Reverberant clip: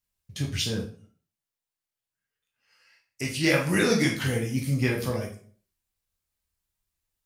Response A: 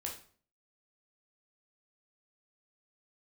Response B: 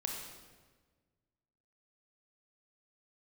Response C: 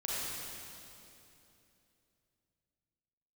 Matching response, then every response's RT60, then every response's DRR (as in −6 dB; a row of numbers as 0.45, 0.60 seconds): A; 0.45, 1.4, 2.9 seconds; −1.0, 0.5, −7.0 decibels